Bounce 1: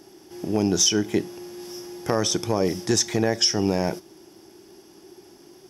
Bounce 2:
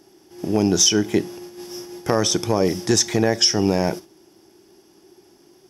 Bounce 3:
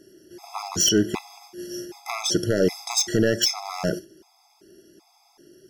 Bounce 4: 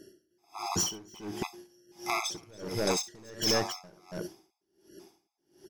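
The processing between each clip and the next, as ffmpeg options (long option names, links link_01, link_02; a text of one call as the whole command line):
ffmpeg -i in.wav -af "agate=range=-7dB:threshold=-38dB:ratio=16:detection=peak,volume=3.5dB" out.wav
ffmpeg -i in.wav -af "aeval=exprs='0.299*(abs(mod(val(0)/0.299+3,4)-2)-1)':channel_layout=same,acontrast=61,afftfilt=real='re*gt(sin(2*PI*1.3*pts/sr)*(1-2*mod(floor(b*sr/1024/670),2)),0)':imag='im*gt(sin(2*PI*1.3*pts/sr)*(1-2*mod(floor(b*sr/1024/670),2)),0)':win_size=1024:overlap=0.75,volume=-5dB" out.wav
ffmpeg -i in.wav -af "asoftclip=type=hard:threshold=-18.5dB,aecho=1:1:64.14|279.9:0.447|0.562,aeval=exprs='val(0)*pow(10,-30*(0.5-0.5*cos(2*PI*1.4*n/s))/20)':channel_layout=same" out.wav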